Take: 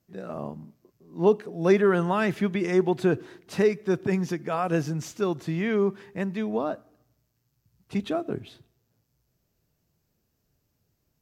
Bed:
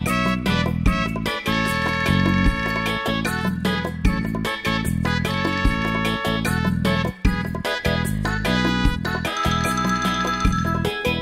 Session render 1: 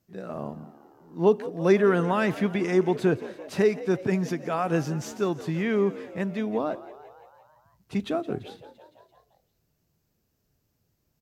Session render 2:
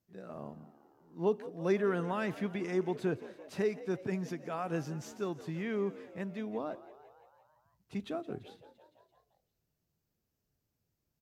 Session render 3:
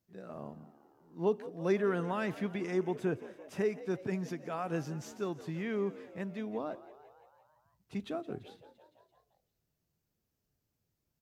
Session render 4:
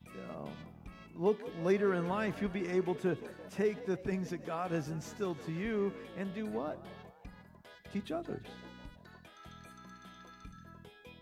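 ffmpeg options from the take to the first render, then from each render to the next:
-filter_complex "[0:a]asplit=7[a][b][c][d][e][f][g];[b]adelay=170,afreqshift=64,volume=-17dB[h];[c]adelay=340,afreqshift=128,volume=-20.9dB[i];[d]adelay=510,afreqshift=192,volume=-24.8dB[j];[e]adelay=680,afreqshift=256,volume=-28.6dB[k];[f]adelay=850,afreqshift=320,volume=-32.5dB[l];[g]adelay=1020,afreqshift=384,volume=-36.4dB[m];[a][h][i][j][k][l][m]amix=inputs=7:normalize=0"
-af "volume=-10dB"
-filter_complex "[0:a]asettb=1/sr,asplit=3[a][b][c];[a]atrim=end=2.814[d];[b]atrim=start=2.81:end=3.79,asetpts=PTS-STARTPTS,afade=t=in:d=0.004:c=qsin,afade=t=out:st=0.976:d=0.004:c=qsin,equalizer=f=4.2k:w=5.1:g=-11.5[e];[c]atrim=start=3.786[f];[d][e]acrossfade=d=0.004:c1=hsin:c2=qsin[g];[g][f]acrossfade=d=0.004:c1=qsin:c2=hsin"
-filter_complex "[1:a]volume=-32dB[a];[0:a][a]amix=inputs=2:normalize=0"

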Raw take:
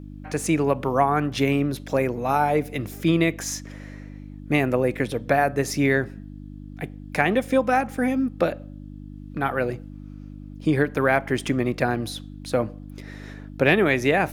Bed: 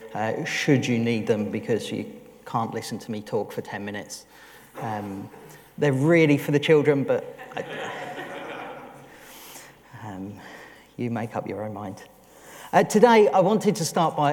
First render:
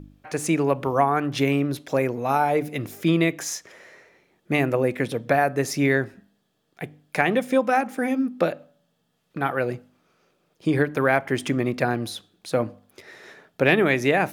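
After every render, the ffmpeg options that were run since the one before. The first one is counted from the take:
-af "bandreject=f=50:t=h:w=4,bandreject=f=100:t=h:w=4,bandreject=f=150:t=h:w=4,bandreject=f=200:t=h:w=4,bandreject=f=250:t=h:w=4,bandreject=f=300:t=h:w=4"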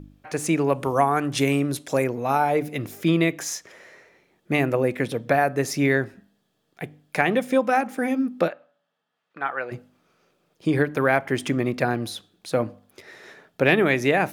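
-filter_complex "[0:a]asettb=1/sr,asplit=3[a][b][c];[a]atrim=end=0.724[d];[b]atrim=start=0.72:end=2.04,asetpts=PTS-STARTPTS,afade=t=in:d=0.004:c=qsin,afade=t=out:st=1.316:d=0.004:c=qsin,equalizer=f=8.6k:t=o:w=1:g=11.5[e];[c]atrim=start=2.036[f];[d][e]acrossfade=d=0.004:c1=hsin:c2=qsin[g];[g][f]acrossfade=d=0.004:c1=qsin:c2=hsin,asplit=3[h][i][j];[h]afade=t=out:st=8.47:d=0.02[k];[i]bandpass=f=1.4k:t=q:w=0.89,afade=t=in:st=8.47:d=0.02,afade=t=out:st=9.71:d=0.02[l];[j]afade=t=in:st=9.71:d=0.02[m];[k][l][m]amix=inputs=3:normalize=0"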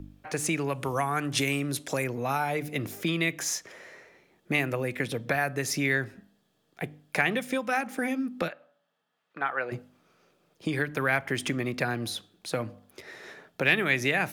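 -filter_complex "[0:a]acrossover=split=150|1400[a][b][c];[a]alimiter=level_in=10.5dB:limit=-24dB:level=0:latency=1,volume=-10.5dB[d];[b]acompressor=threshold=-29dB:ratio=6[e];[d][e][c]amix=inputs=3:normalize=0"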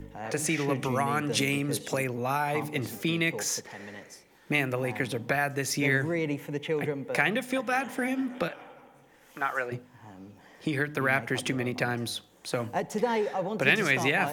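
-filter_complex "[1:a]volume=-12dB[a];[0:a][a]amix=inputs=2:normalize=0"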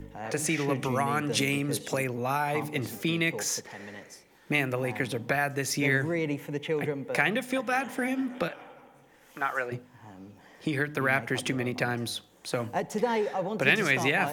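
-af anull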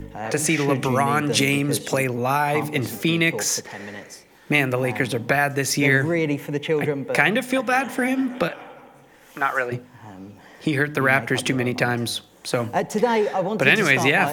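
-af "volume=7.5dB,alimiter=limit=-1dB:level=0:latency=1"

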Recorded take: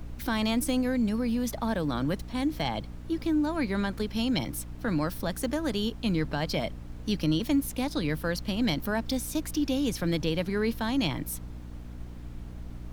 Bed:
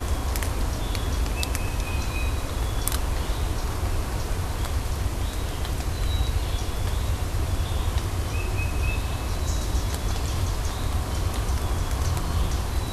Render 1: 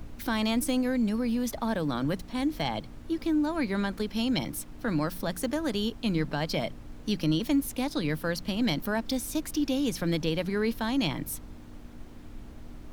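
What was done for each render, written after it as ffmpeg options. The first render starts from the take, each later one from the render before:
-af "bandreject=f=60:t=h:w=4,bandreject=f=120:t=h:w=4,bandreject=f=180:t=h:w=4"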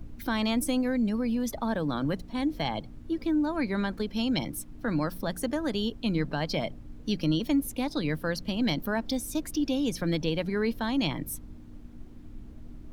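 -af "afftdn=nr=9:nf=-45"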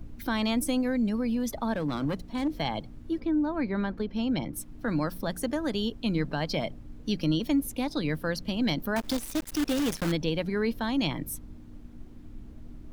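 -filter_complex "[0:a]asettb=1/sr,asplit=3[a][b][c];[a]atrim=end=1.734[d];[b]atrim=start=1.73:end=2.48,asetpts=PTS-STARTPTS,afade=t=in:d=0.004:c=qsin,afade=t=out:st=0.746:d=0.004:c=qsin,aeval=exprs='clip(val(0),-1,0.0562)':c=same[e];[c]atrim=start=2.476[f];[d][e]acrossfade=d=0.004:c1=hsin:c2=qsin[g];[g][f]acrossfade=d=0.004:c1=qsin:c2=hsin,asplit=3[h][i][j];[h]afade=t=out:st=3.19:d=0.02[k];[i]lowpass=f=1.8k:p=1,afade=t=in:st=3.19:d=0.02,afade=t=out:st=4.55:d=0.02[l];[j]afade=t=in:st=4.55:d=0.02[m];[k][l][m]amix=inputs=3:normalize=0,asettb=1/sr,asplit=3[n][o][p];[n]atrim=end=8.964[q];[o]atrim=start=8.96:end=10.12,asetpts=PTS-STARTPTS,afade=t=in:d=0.004:c=qsin,afade=t=out:st=1.156:d=0.004:c=qsin,acrusher=bits=6:dc=4:mix=0:aa=0.000001[r];[p]atrim=start=10.116[s];[q][r]acrossfade=d=0.004:c1=hsin:c2=qsin[t];[t][s]acrossfade=d=0.004:c1=qsin:c2=hsin"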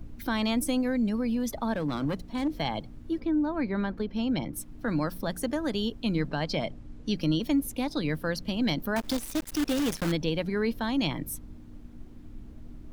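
-filter_complex "[0:a]asettb=1/sr,asplit=3[a][b][c];[a]atrim=end=6.284[d];[b]atrim=start=6.28:end=7.16,asetpts=PTS-STARTPTS,afade=t=in:d=0.004:c=qsin,afade=t=out:st=0.876:d=0.004:c=qsin,lowpass=9.7k[e];[c]atrim=start=7.156[f];[d][e]acrossfade=d=0.004:c1=hsin:c2=qsin[g];[g][f]acrossfade=d=0.004:c1=qsin:c2=hsin"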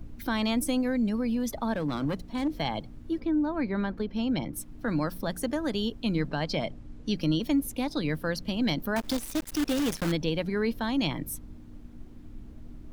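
-af anull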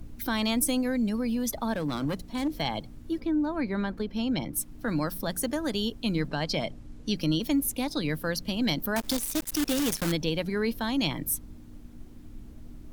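-af "aemphasis=mode=production:type=cd"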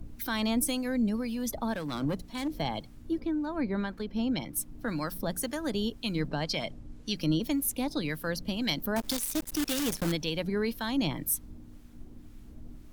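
-filter_complex "[0:a]acrossover=split=970[a][b];[a]aeval=exprs='val(0)*(1-0.5/2+0.5/2*cos(2*PI*1.9*n/s))':c=same[c];[b]aeval=exprs='val(0)*(1-0.5/2-0.5/2*cos(2*PI*1.9*n/s))':c=same[d];[c][d]amix=inputs=2:normalize=0"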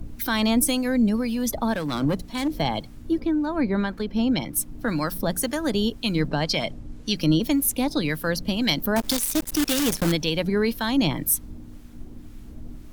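-af "volume=7.5dB"

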